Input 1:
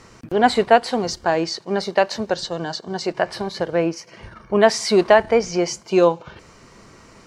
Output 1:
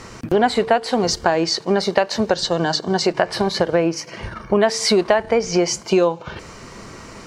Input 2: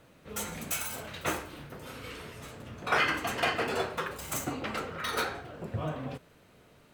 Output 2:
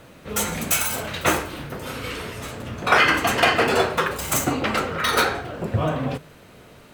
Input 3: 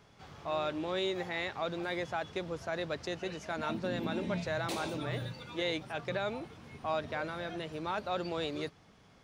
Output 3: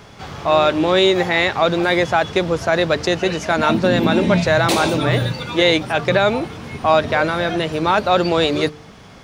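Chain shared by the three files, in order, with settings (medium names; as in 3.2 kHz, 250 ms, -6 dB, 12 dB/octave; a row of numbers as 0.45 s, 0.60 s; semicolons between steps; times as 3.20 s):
de-hum 150 Hz, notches 3; compression 5:1, threshold -23 dBFS; peak normalisation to -2 dBFS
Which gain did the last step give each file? +9.0 dB, +12.0 dB, +19.0 dB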